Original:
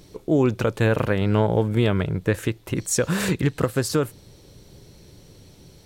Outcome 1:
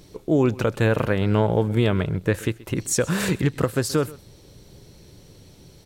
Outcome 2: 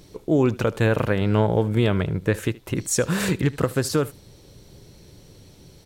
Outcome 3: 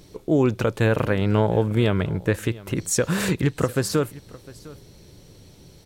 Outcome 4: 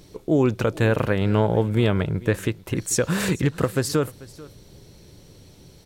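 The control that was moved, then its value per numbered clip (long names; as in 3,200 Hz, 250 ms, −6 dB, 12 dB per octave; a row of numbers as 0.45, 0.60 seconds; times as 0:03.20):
single-tap delay, delay time: 129, 75, 706, 440 milliseconds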